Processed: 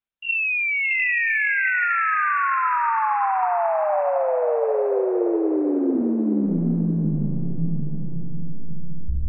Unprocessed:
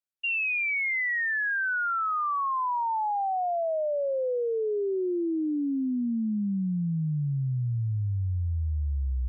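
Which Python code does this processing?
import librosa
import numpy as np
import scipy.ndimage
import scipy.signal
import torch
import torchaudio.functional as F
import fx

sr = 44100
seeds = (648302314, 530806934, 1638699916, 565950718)

y = fx.lpc_monotone(x, sr, seeds[0], pitch_hz=170.0, order=10)
y = fx.echo_diffused(y, sr, ms=634, feedback_pct=44, wet_db=-4)
y = y * librosa.db_to_amplitude(5.0)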